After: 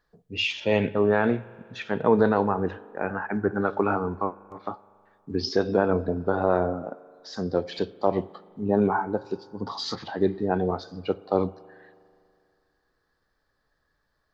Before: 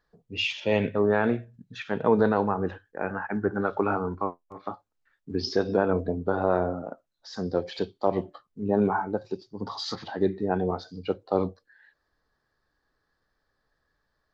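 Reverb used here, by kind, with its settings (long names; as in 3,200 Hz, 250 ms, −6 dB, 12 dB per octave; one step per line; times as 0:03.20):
spring reverb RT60 2.4 s, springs 40 ms, chirp 75 ms, DRR 19.5 dB
level +1.5 dB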